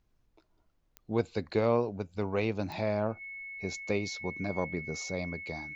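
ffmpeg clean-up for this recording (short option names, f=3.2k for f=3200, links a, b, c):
-af "adeclick=t=4,bandreject=f=2.2k:w=30,agate=range=-21dB:threshold=-62dB"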